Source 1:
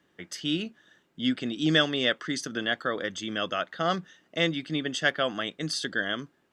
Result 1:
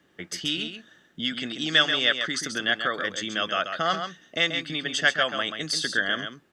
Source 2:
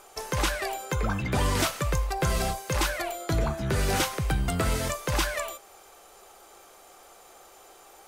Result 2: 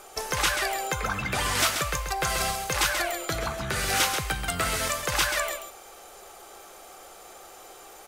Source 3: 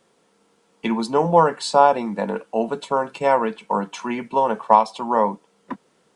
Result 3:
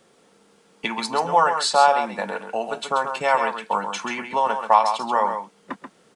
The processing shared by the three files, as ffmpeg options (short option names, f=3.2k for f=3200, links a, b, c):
-filter_complex "[0:a]bandreject=f=980:w=12,acrossover=split=750[a][b];[a]acompressor=threshold=-38dB:ratio=6[c];[c][b]amix=inputs=2:normalize=0,aecho=1:1:134:0.422,volume=4.5dB"